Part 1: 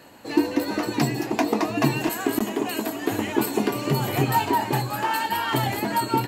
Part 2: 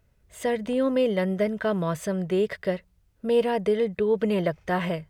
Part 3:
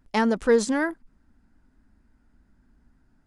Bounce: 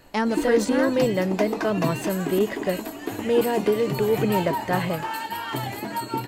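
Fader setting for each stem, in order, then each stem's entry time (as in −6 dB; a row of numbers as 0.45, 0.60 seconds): −5.5, +1.0, −1.5 decibels; 0.00, 0.00, 0.00 seconds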